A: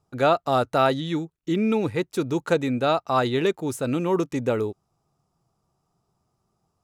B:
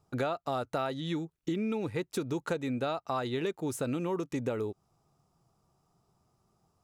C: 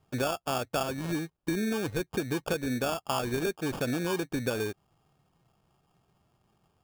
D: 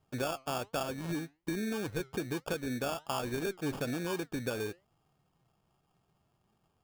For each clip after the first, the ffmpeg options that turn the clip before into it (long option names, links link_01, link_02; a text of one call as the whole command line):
ffmpeg -i in.wav -af "acompressor=threshold=-31dB:ratio=6,volume=1dB" out.wav
ffmpeg -i in.wav -af "acrusher=samples=22:mix=1:aa=0.000001,volume=2dB" out.wav
ffmpeg -i in.wav -af "flanger=delay=3:depth=4.7:regen=87:speed=1.2:shape=triangular" out.wav